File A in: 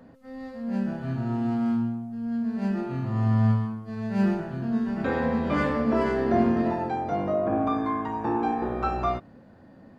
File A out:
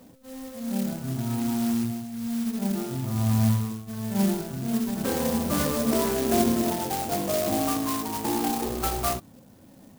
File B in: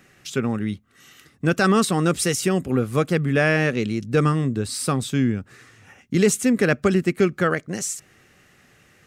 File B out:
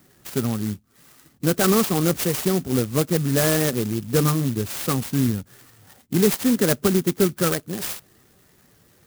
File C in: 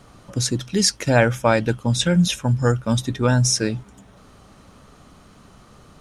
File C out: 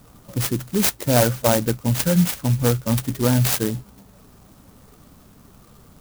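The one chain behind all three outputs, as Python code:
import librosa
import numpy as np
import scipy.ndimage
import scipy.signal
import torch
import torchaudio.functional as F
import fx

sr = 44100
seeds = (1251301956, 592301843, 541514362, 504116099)

y = fx.spec_quant(x, sr, step_db=15)
y = fx.peak_eq(y, sr, hz=2600.0, db=-7.5, octaves=0.32)
y = fx.clock_jitter(y, sr, seeds[0], jitter_ms=0.12)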